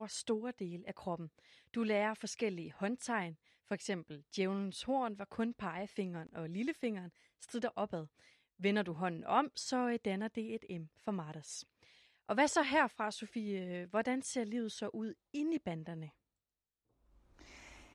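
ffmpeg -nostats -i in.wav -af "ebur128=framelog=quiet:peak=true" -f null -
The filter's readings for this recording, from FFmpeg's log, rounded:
Integrated loudness:
  I:         -38.4 LUFS
  Threshold: -48.9 LUFS
Loudness range:
  LRA:         5.0 LU
  Threshold: -58.7 LUFS
  LRA low:   -41.3 LUFS
  LRA high:  -36.3 LUFS
True peak:
  Peak:      -17.7 dBFS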